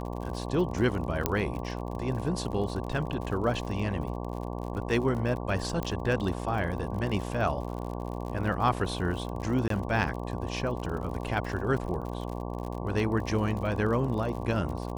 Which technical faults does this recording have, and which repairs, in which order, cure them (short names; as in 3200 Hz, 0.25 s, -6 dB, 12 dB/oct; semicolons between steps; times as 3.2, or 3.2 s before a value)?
buzz 60 Hz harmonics 19 -35 dBFS
crackle 59/s -36 dBFS
1.26 pop -9 dBFS
5.83 pop -18 dBFS
9.68–9.7 gap 23 ms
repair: de-click; de-hum 60 Hz, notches 19; interpolate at 9.68, 23 ms